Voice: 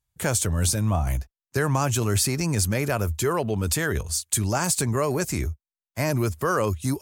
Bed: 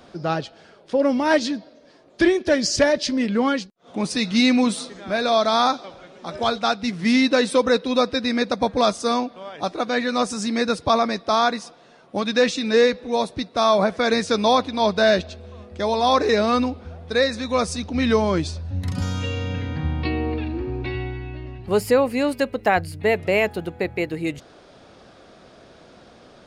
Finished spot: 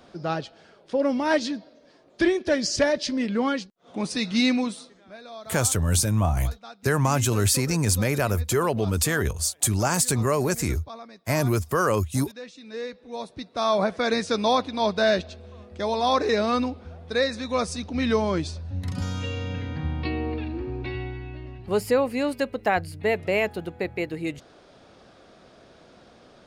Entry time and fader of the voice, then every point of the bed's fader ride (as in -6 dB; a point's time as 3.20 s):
5.30 s, +1.0 dB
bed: 4.49 s -4 dB
5.21 s -22 dB
12.47 s -22 dB
13.78 s -4 dB